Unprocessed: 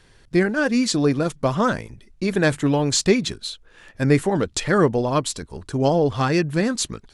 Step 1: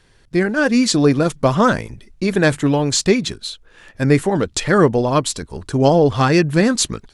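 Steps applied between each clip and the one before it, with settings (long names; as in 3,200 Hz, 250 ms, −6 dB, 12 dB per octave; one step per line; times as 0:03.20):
automatic gain control
level −1 dB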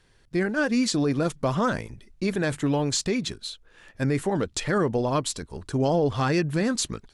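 brickwall limiter −8 dBFS, peak gain reduction 6 dB
level −7 dB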